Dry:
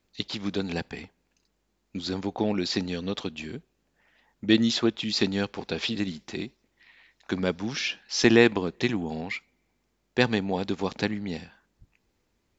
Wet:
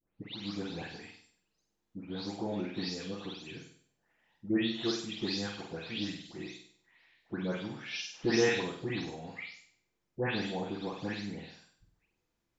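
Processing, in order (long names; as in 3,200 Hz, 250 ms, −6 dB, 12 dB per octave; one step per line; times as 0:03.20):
every frequency bin delayed by itself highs late, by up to 290 ms
on a send: flutter between parallel walls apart 8.4 metres, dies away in 0.55 s
on the sum: level −9 dB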